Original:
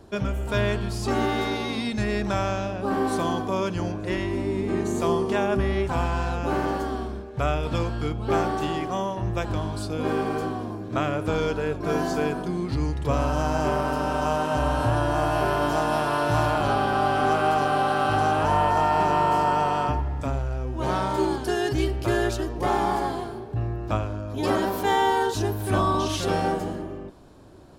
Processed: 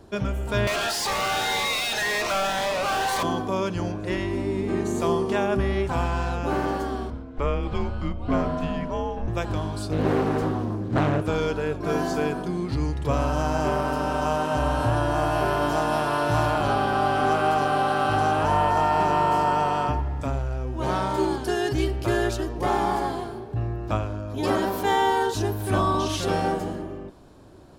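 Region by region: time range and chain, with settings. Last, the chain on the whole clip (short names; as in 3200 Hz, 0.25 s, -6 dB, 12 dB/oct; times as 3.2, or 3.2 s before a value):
0.67–3.23 HPF 550 Hz 24 dB/oct + overdrive pedal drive 37 dB, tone 4100 Hz, clips at -16.5 dBFS + cascading phaser rising 1.9 Hz
7.1–9.28 LPF 2200 Hz 6 dB/oct + frequency shift -130 Hz
9.91–11.22 low shelf 270 Hz +8.5 dB + Doppler distortion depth 0.57 ms
whole clip: dry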